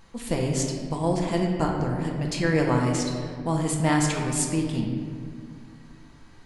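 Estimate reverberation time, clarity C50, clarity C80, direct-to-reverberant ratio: 2.1 s, 2.5 dB, 4.0 dB, −0.5 dB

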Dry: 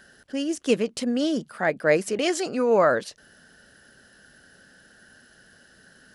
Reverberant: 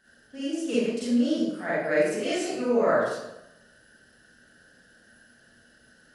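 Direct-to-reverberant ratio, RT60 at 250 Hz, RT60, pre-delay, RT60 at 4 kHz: −10.5 dB, 0.95 s, 0.90 s, 34 ms, 0.65 s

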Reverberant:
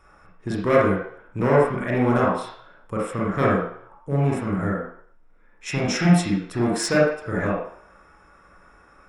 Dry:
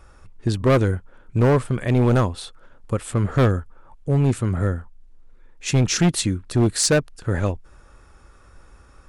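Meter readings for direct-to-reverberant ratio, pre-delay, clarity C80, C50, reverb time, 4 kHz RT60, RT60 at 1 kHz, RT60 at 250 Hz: −5.5 dB, 36 ms, 5.0 dB, 0.5 dB, 0.60 s, 0.60 s, 0.65 s, 0.45 s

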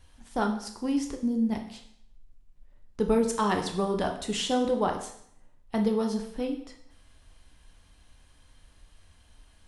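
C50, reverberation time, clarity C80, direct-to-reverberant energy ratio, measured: 8.5 dB, 0.65 s, 11.5 dB, 3.5 dB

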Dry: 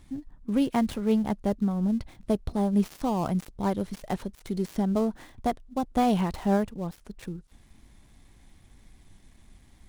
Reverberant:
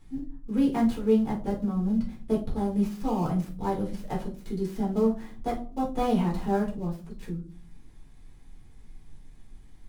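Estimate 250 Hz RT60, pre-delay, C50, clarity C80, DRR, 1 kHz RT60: 0.65 s, 4 ms, 9.0 dB, 16.0 dB, −4.5 dB, 0.35 s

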